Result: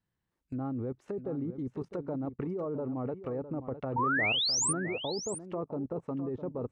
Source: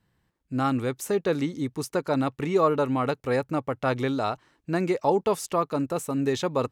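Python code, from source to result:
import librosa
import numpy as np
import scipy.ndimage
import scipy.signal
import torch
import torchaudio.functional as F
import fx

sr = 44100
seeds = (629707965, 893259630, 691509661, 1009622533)

y = fx.env_lowpass_down(x, sr, base_hz=570.0, full_db=-24.0)
y = fx.level_steps(y, sr, step_db=17)
y = fx.spec_paint(y, sr, seeds[0], shape='rise', start_s=3.96, length_s=0.77, low_hz=870.0, high_hz=9700.0, level_db=-29.0)
y = y + 10.0 ** (-11.5 / 20.0) * np.pad(y, (int(657 * sr / 1000.0), 0))[:len(y)]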